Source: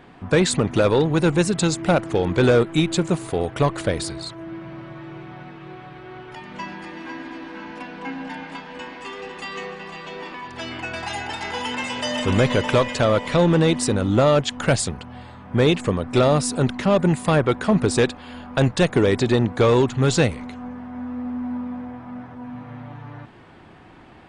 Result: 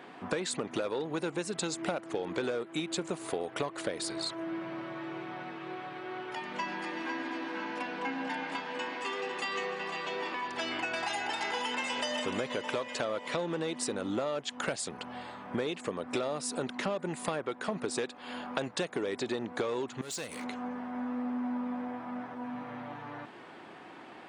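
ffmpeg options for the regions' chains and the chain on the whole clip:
-filter_complex "[0:a]asettb=1/sr,asplit=3[a][b][c];[a]atrim=end=20.014[d];[b]atrim=start=20.01:end=20.44,asetpts=PTS-STARTPTS,afade=t=in:d=0.004:c=qsin,afade=t=out:st=0.426:d=0.004:c=qsin,aemphasis=mode=production:type=75fm,acompressor=threshold=-30dB:ratio=10:attack=3.2:release=140:knee=1:detection=peak,asoftclip=type=hard:threshold=-32.5dB[e];[c]atrim=start=20.436[f];[d][e]acrossfade=d=0.004:c1=hsin:c2=qsin[g];[g][f]acrossfade=d=0.004:c1=qsin:c2=hsin,highpass=290,acompressor=threshold=-30dB:ratio=10"

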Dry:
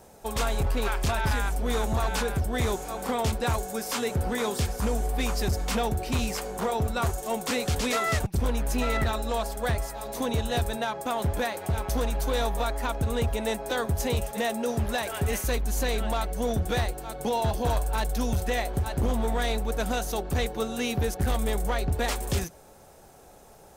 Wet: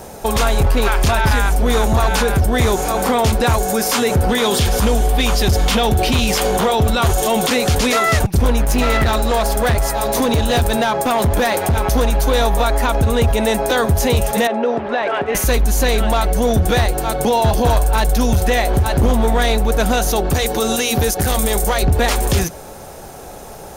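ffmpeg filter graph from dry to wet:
-filter_complex "[0:a]asettb=1/sr,asplit=3[a][b][c];[a]atrim=end=4.294[d];[b]atrim=start=4.29:end=7.5,asetpts=PTS-STARTPTS,afade=t=in:d=0.004:c=qsin,afade=t=out:st=3.206:d=0.004:c=qsin,acontrast=84,equalizer=f=3.3k:w=2.4:g=7.5[e];[c]atrim=start=7.496[f];[d][e]acrossfade=d=0.004:c1=hsin:c2=qsin[g];[g][f]acrossfade=d=0.004:c1=qsin:c2=hsin,asettb=1/sr,asplit=3[h][i][j];[h]atrim=end=8.654[k];[i]atrim=start=8.65:end=11.77,asetpts=PTS-STARTPTS,afade=t=in:d=0.004:c=qsin,afade=t=out:st=3.116:d=0.004:c=qsin,acompressor=threshold=-29dB:ratio=3:attack=3.2:release=140:knee=1:detection=peak,volume=29dB,asoftclip=hard,volume=-29dB[l];[j]atrim=start=11.766[m];[k][l]acrossfade=d=0.004:c1=hsin:c2=qsin[n];[n][m]acrossfade=d=0.004:c1=qsin:c2=hsin,asettb=1/sr,asplit=3[o][p][q];[o]atrim=end=14.474[r];[p]atrim=start=14.47:end=15.35,asetpts=PTS-STARTPTS,afade=t=in:d=0.004:c=qsin,afade=t=out:st=0.876:d=0.004:c=qsin,acompressor=threshold=-29dB:ratio=4:attack=3.2:release=140:knee=1:detection=peak,highpass=300,lowpass=3.3k,aemphasis=mode=reproduction:type=75kf[s];[q]atrim=start=15.346[t];[r][s]acrossfade=d=0.004:c1=hsin:c2=qsin[u];[u][t]acrossfade=d=0.004:c1=qsin:c2=hsin,asettb=1/sr,asplit=3[v][w][x];[v]atrim=end=20.344[y];[w]atrim=start=20.34:end=21.83,asetpts=PTS-STARTPTS,afade=t=in:d=0.004:c=qsin,afade=t=out:st=1.486:d=0.004:c=qsin,bass=f=250:g=-4,treble=f=4k:g=8,bandreject=f=60:t=h:w=6,bandreject=f=120:t=h:w=6,bandreject=f=180:t=h:w=6,bandreject=f=240:t=h:w=6,bandreject=f=300:t=h:w=6,bandreject=f=360:t=h:w=6,bandreject=f=420:t=h:w=6[z];[x]atrim=start=21.826[aa];[y][z]acrossfade=d=0.004:c1=hsin:c2=qsin[ab];[ab][aa]acrossfade=d=0.004:c1=qsin:c2=hsin,bandreject=f=7.8k:w=15,alimiter=level_in=25dB:limit=-1dB:release=50:level=0:latency=1,volume=-7.5dB"

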